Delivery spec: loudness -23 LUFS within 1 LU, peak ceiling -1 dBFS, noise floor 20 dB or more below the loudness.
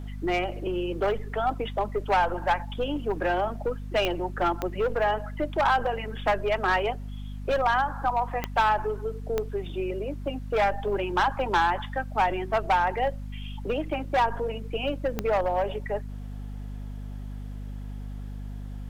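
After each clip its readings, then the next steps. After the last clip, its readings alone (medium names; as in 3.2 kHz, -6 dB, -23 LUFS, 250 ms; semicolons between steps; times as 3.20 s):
clicks found 5; hum 50 Hz; highest harmonic 250 Hz; hum level -33 dBFS; loudness -27.5 LUFS; peak level -11.5 dBFS; loudness target -23.0 LUFS
-> de-click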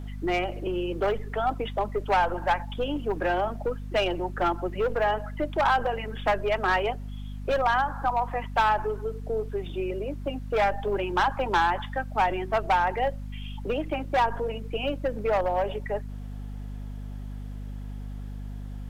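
clicks found 1; hum 50 Hz; highest harmonic 250 Hz; hum level -33 dBFS
-> de-hum 50 Hz, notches 5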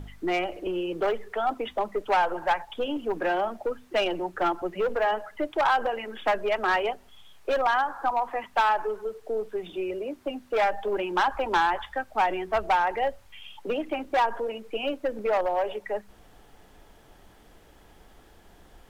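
hum not found; loudness -27.5 LUFS; peak level -13.0 dBFS; loudness target -23.0 LUFS
-> trim +4.5 dB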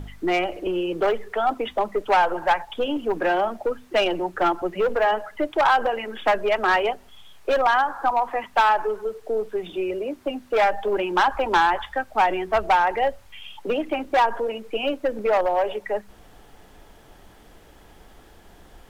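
loudness -23.0 LUFS; peak level -8.5 dBFS; noise floor -50 dBFS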